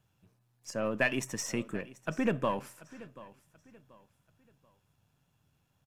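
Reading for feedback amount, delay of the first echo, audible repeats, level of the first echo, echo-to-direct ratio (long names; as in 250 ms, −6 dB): 33%, 734 ms, 2, −19.0 dB, −18.5 dB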